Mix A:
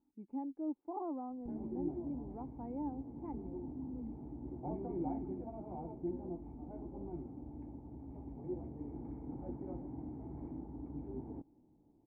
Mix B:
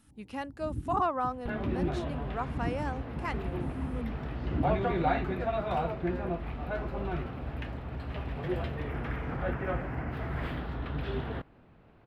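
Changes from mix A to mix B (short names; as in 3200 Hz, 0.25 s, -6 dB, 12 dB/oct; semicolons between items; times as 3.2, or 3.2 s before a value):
speech -3.5 dB; first sound: unmuted; master: remove vocal tract filter u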